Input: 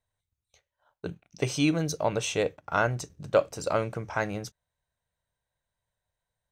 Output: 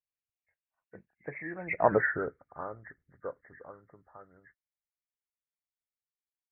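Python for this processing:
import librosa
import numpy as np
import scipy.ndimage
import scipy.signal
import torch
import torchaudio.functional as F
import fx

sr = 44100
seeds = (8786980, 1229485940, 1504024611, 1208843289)

y = fx.freq_compress(x, sr, knee_hz=1300.0, ratio=4.0)
y = fx.doppler_pass(y, sr, speed_mps=35, closest_m=3.3, pass_at_s=1.93)
y = fx.hpss(y, sr, part='harmonic', gain_db=-11)
y = F.gain(torch.from_numpy(y), 6.5).numpy()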